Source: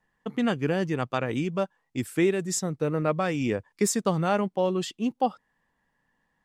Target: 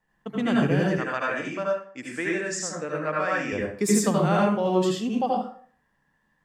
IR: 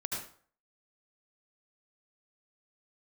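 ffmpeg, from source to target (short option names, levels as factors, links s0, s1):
-filter_complex "[0:a]asettb=1/sr,asplit=3[s0][s1][s2];[s0]atrim=end=0.894[s3];[s1]atrim=start=0.89:end=3.53,asetpts=PTS-STARTPTS,afade=t=in:d=0.004:c=qsin,afade=t=out:st=2.636:d=0.004:c=qsin,highpass=360,equalizer=f=380:t=q:w=4:g=-8,equalizer=f=770:t=q:w=4:g=-4,equalizer=f=1700:t=q:w=4:g=7,equalizer=f=3600:t=q:w=4:g=-8,lowpass=f=7700:w=0.5412,lowpass=f=7700:w=1.3066[s4];[s2]atrim=start=3.526[s5];[s3][s4]acrossfade=d=0.004:c1=hsin:c2=qsin[s6];[s6][s5]acrossfade=d=0.004:c1=qsin:c2=hsin[s7];[1:a]atrim=start_sample=2205[s8];[s7][s8]afir=irnorm=-1:irlink=0"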